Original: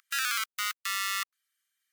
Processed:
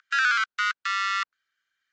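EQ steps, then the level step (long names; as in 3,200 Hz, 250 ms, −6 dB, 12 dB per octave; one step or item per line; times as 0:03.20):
Chebyshev low-pass filter 7,500 Hz, order 5
high-frequency loss of the air 140 metres
parametric band 1,500 Hz +10.5 dB 0.3 octaves
+5.5 dB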